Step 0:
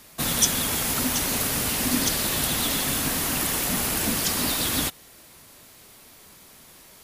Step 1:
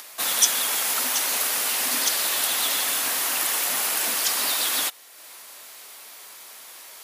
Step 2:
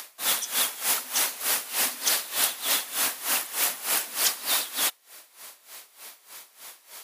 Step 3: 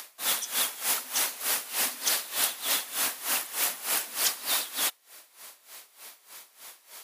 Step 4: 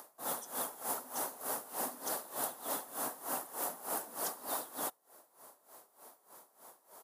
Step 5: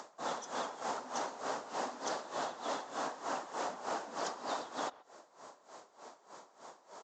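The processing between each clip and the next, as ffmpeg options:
ffmpeg -i in.wav -af "acompressor=mode=upward:threshold=-37dB:ratio=2.5,highpass=670,volume=2dB" out.wav
ffmpeg -i in.wav -af "aeval=exprs='val(0)*pow(10,-18*(0.5-0.5*cos(2*PI*3.3*n/s))/20)':channel_layout=same,volume=2dB" out.wav
ffmpeg -i in.wav -af "highpass=76,volume=-2.5dB" out.wav
ffmpeg -i in.wav -af "firequalizer=gain_entry='entry(810,0);entry(2300,-23);entry(10000,-10)':delay=0.05:min_phase=1" out.wav
ffmpeg -i in.wav -filter_complex "[0:a]acrossover=split=340|6000[link_01][link_02][link_03];[link_01]acompressor=threshold=-58dB:ratio=4[link_04];[link_02]acompressor=threshold=-41dB:ratio=4[link_05];[link_03]acompressor=threshold=-49dB:ratio=4[link_06];[link_04][link_05][link_06]amix=inputs=3:normalize=0,asplit=2[link_07][link_08];[link_08]adelay=130,highpass=300,lowpass=3400,asoftclip=type=hard:threshold=-38.5dB,volume=-20dB[link_09];[link_07][link_09]amix=inputs=2:normalize=0,aresample=16000,aresample=44100,volume=6.5dB" out.wav

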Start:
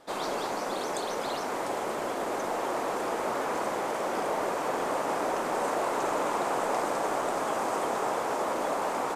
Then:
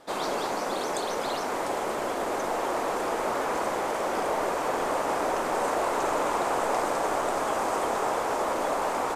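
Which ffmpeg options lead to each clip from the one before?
ffmpeg -i in.wav -af "asubboost=boost=3:cutoff=80,volume=2.5dB" out.wav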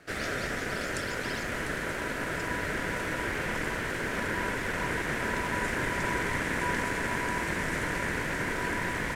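ffmpeg -i in.wav -af "asubboost=boost=5:cutoff=120,aeval=exprs='val(0)*sin(2*PI*980*n/s)':channel_layout=same" out.wav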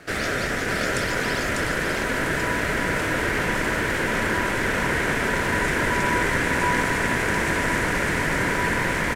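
ffmpeg -i in.wav -filter_complex "[0:a]aecho=1:1:597:0.631,asplit=2[link_01][link_02];[link_02]alimiter=level_in=4dB:limit=-24dB:level=0:latency=1,volume=-4dB,volume=-2.5dB[link_03];[link_01][link_03]amix=inputs=2:normalize=0,volume=4.5dB" out.wav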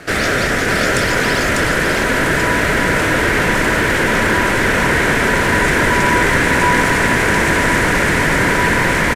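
ffmpeg -i in.wav -filter_complex "[0:a]aresample=32000,aresample=44100,asplit=2[link_01][link_02];[link_02]asoftclip=type=hard:threshold=-23.5dB,volume=-6dB[link_03];[link_01][link_03]amix=inputs=2:normalize=0,volume=6.5dB" out.wav

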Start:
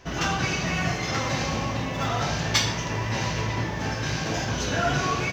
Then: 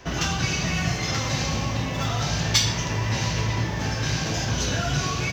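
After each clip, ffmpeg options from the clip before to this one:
ffmpeg -i in.wav -filter_complex "[0:a]acrossover=split=170|3000[link_01][link_02][link_03];[link_02]acompressor=threshold=-34dB:ratio=4[link_04];[link_01][link_04][link_03]amix=inputs=3:normalize=0,volume=4.5dB" out.wav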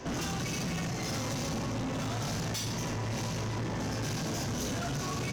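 ffmpeg -i in.wav -af "equalizer=frequency=125:width_type=o:width=1:gain=4,equalizer=frequency=250:width_type=o:width=1:gain=11,equalizer=frequency=500:width_type=o:width=1:gain=6,equalizer=frequency=1000:width_type=o:width=1:gain=4,equalizer=frequency=8000:width_type=o:width=1:gain=8,alimiter=limit=-12.5dB:level=0:latency=1:release=486,asoftclip=type=tanh:threshold=-28.5dB,volume=-3dB" out.wav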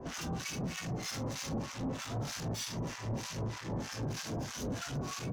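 ffmpeg -i in.wav -filter_complex "[0:a]acrossover=split=1000[link_01][link_02];[link_01]aeval=exprs='val(0)*(1-1/2+1/2*cos(2*PI*3.2*n/s))':channel_layout=same[link_03];[link_02]aeval=exprs='val(0)*(1-1/2-1/2*cos(2*PI*3.2*n/s))':channel_layout=same[link_04];[link_03][link_04]amix=inputs=2:normalize=0" out.wav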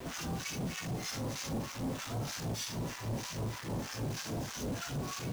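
ffmpeg -i in.wav -af "acrusher=bits=7:mix=0:aa=0.000001" out.wav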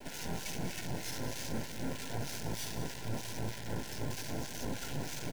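ffmpeg -i in.wav -af "aeval=exprs='0.0473*(cos(1*acos(clip(val(0)/0.0473,-1,1)))-cos(1*PI/2))+0.0133*(cos(6*acos(clip(val(0)/0.0473,-1,1)))-cos(6*PI/2))+0.00473*(cos(7*acos(clip(val(0)/0.0473,-1,1)))-cos(7*PI/2))':channel_layout=same,asuperstop=centerf=1200:order=20:qfactor=4.3,aecho=1:1:189:0.282,volume=-3.5dB" out.wav

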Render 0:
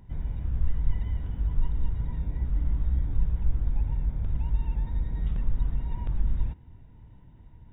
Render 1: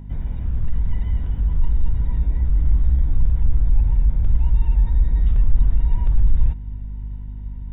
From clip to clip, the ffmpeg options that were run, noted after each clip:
ffmpeg -i in.wav -af "aeval=exprs='0.251*sin(PI/2*2*val(0)/0.251)':channel_layout=same,aeval=exprs='val(0)+0.0282*(sin(2*PI*50*n/s)+sin(2*PI*2*50*n/s)/2+sin(2*PI*3*50*n/s)/3+sin(2*PI*4*50*n/s)/4+sin(2*PI*5*50*n/s)/5)':channel_layout=same,asubboost=boost=2.5:cutoff=87,volume=-4dB" out.wav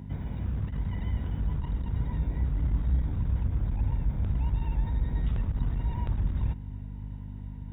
ffmpeg -i in.wav -af "highpass=90" out.wav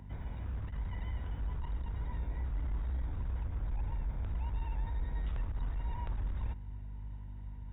ffmpeg -i in.wav -filter_complex "[0:a]highshelf=frequency=2500:gain=-10,acrossover=split=240[link_01][link_02];[link_01]asoftclip=type=tanh:threshold=-27.5dB[link_03];[link_03][link_02]amix=inputs=2:normalize=0,equalizer=frequency=200:width=0.42:gain=-13,volume=1.5dB" out.wav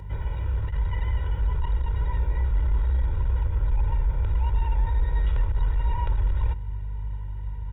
ffmpeg -i in.wav -af "aecho=1:1:2.1:0.92,volume=7.5dB" out.wav

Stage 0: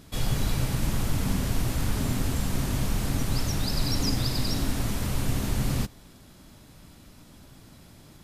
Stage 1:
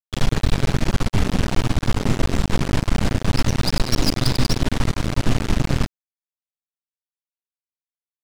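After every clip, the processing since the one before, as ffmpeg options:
ffmpeg -i in.wav -af "acrusher=bits=3:dc=4:mix=0:aa=0.000001,adynamicsmooth=sensitivity=6:basefreq=3400,aeval=exprs='0.224*(cos(1*acos(clip(val(0)/0.224,-1,1)))-cos(1*PI/2))+0.112*(cos(6*acos(clip(val(0)/0.224,-1,1)))-cos(6*PI/2))':channel_layout=same,volume=1.5dB" out.wav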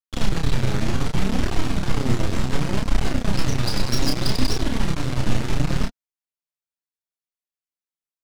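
ffmpeg -i in.wav -filter_complex "[0:a]flanger=delay=2.3:depth=7.6:regen=30:speed=0.66:shape=triangular,asplit=2[link_01][link_02];[link_02]adelay=31,volume=-4dB[link_03];[link_01][link_03]amix=inputs=2:normalize=0" out.wav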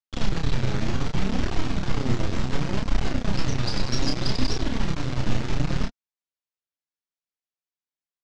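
ffmpeg -i in.wav -af "lowpass=frequency=6900:width=0.5412,lowpass=frequency=6900:width=1.3066,volume=-3dB" out.wav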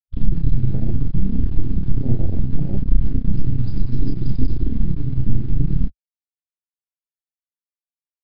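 ffmpeg -i in.wav -af "afwtdn=0.0708,lowshelf=frequency=250:gain=12,aresample=11025,aresample=44100,volume=-3.5dB" out.wav

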